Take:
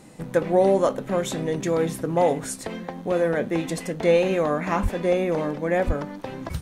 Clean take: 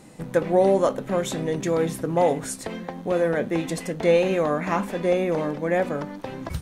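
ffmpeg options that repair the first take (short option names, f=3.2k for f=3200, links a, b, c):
-filter_complex "[0:a]asplit=3[a][b][c];[a]afade=t=out:st=4.82:d=0.02[d];[b]highpass=f=140:w=0.5412,highpass=f=140:w=1.3066,afade=t=in:st=4.82:d=0.02,afade=t=out:st=4.94:d=0.02[e];[c]afade=t=in:st=4.94:d=0.02[f];[d][e][f]amix=inputs=3:normalize=0,asplit=3[g][h][i];[g]afade=t=out:st=5.86:d=0.02[j];[h]highpass=f=140:w=0.5412,highpass=f=140:w=1.3066,afade=t=in:st=5.86:d=0.02,afade=t=out:st=5.98:d=0.02[k];[i]afade=t=in:st=5.98:d=0.02[l];[j][k][l]amix=inputs=3:normalize=0"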